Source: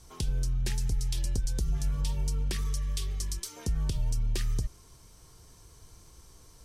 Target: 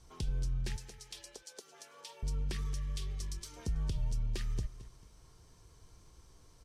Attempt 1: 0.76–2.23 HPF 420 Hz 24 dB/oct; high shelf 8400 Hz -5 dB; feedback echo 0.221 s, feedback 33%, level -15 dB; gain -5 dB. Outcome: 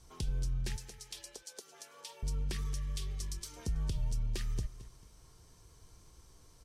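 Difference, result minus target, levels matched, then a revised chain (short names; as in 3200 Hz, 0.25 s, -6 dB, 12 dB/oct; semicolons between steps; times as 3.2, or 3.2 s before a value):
8000 Hz band +2.5 dB
0.76–2.23 HPF 420 Hz 24 dB/oct; high shelf 8400 Hz -12 dB; feedback echo 0.221 s, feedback 33%, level -15 dB; gain -5 dB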